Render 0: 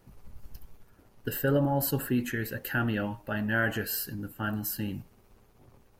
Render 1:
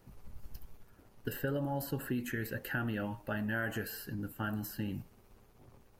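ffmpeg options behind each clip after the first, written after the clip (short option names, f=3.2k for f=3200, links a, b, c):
-filter_complex "[0:a]acrossover=split=2700|5600[a][b][c];[a]acompressor=threshold=-31dB:ratio=4[d];[b]acompressor=threshold=-56dB:ratio=4[e];[c]acompressor=threshold=-45dB:ratio=4[f];[d][e][f]amix=inputs=3:normalize=0,volume=-1.5dB"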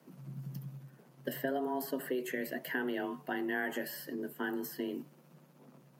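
-af "afreqshift=130"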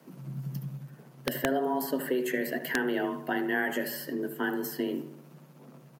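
-filter_complex "[0:a]asplit=2[a][b];[b]adelay=75,lowpass=f=2.3k:p=1,volume=-10.5dB,asplit=2[c][d];[d]adelay=75,lowpass=f=2.3k:p=1,volume=0.54,asplit=2[e][f];[f]adelay=75,lowpass=f=2.3k:p=1,volume=0.54,asplit=2[g][h];[h]adelay=75,lowpass=f=2.3k:p=1,volume=0.54,asplit=2[i][j];[j]adelay=75,lowpass=f=2.3k:p=1,volume=0.54,asplit=2[k][l];[l]adelay=75,lowpass=f=2.3k:p=1,volume=0.54[m];[a][c][e][g][i][k][m]amix=inputs=7:normalize=0,aeval=exprs='(mod(11.2*val(0)+1,2)-1)/11.2':c=same,volume=6dB"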